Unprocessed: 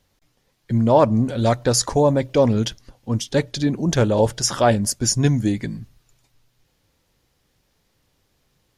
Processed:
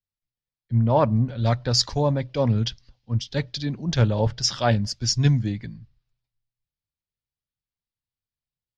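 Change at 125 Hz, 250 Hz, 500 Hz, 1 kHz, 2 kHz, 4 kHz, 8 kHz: 0.0, -6.0, -7.5, -5.5, -4.0, +1.0, -7.5 dB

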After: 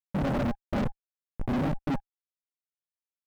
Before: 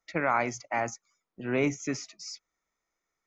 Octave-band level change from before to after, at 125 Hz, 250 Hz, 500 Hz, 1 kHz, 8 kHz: +7.5 dB, +3.5 dB, -3.5 dB, -6.0 dB, n/a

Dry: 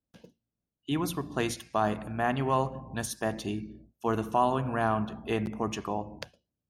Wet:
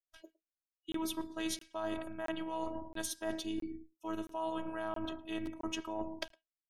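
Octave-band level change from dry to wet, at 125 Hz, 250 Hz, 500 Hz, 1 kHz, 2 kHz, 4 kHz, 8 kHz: -20.5, -6.5, -9.0, -13.0, -9.0, -2.5, -3.5 dB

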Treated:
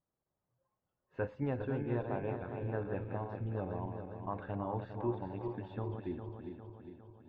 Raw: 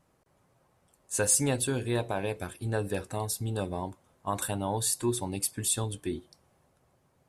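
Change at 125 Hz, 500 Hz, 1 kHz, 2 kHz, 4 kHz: -5.0 dB, -5.5 dB, -6.0 dB, -10.0 dB, under -25 dB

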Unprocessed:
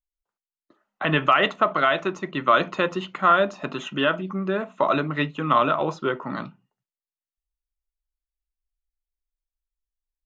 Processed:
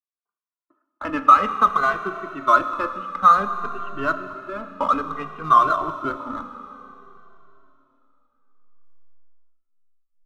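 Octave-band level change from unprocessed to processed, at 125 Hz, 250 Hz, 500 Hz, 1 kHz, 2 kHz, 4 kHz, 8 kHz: -9.0 dB, -4.0 dB, -5.5 dB, +5.0 dB, -2.5 dB, -10.0 dB, n/a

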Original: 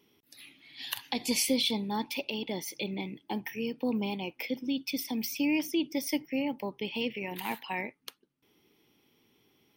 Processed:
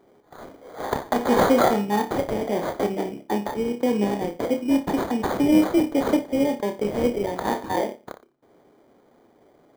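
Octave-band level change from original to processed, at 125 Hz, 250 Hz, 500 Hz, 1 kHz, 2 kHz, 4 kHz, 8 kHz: +10.5, +9.5, +14.5, +14.5, +4.5, -3.5, -2.0 dB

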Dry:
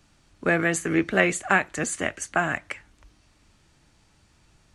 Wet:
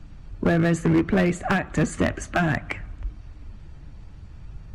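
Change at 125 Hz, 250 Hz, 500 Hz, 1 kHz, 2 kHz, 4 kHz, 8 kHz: +10.0, +5.5, +1.5, -1.0, -4.0, -1.0, -7.5 dB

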